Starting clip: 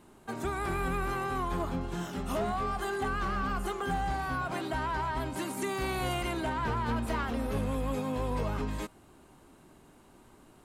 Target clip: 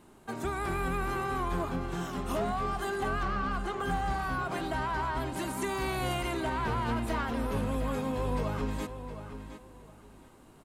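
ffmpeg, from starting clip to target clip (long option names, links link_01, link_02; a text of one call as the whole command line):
ffmpeg -i in.wav -filter_complex "[0:a]asettb=1/sr,asplit=3[link_01][link_02][link_03];[link_01]atrim=end=3.234[link_04];[link_02]atrim=start=3.23:end=3.8,asetpts=PTS-STARTPTS,afade=type=in:duration=0.004:curve=qsin,afade=type=out:start_time=0.566:duration=0.004:curve=qsin,adynamicsmooth=sensitivity=6.5:basefreq=5400[link_05];[link_03]atrim=start=3.796[link_06];[link_04][link_05]acrossfade=duration=0.004:curve1=hsin:curve2=qsin[link_07];[link_07][link_06]acrossfade=duration=0.004:curve1=qsin:curve2=hsin,asplit=2[link_08][link_09];[link_09]adelay=715,lowpass=frequency=4700:poles=1,volume=-10dB,asplit=2[link_10][link_11];[link_11]adelay=715,lowpass=frequency=4700:poles=1,volume=0.25,asplit=2[link_12][link_13];[link_13]adelay=715,lowpass=frequency=4700:poles=1,volume=0.25[link_14];[link_10][link_12][link_14]amix=inputs=3:normalize=0[link_15];[link_08][link_15]amix=inputs=2:normalize=0" out.wav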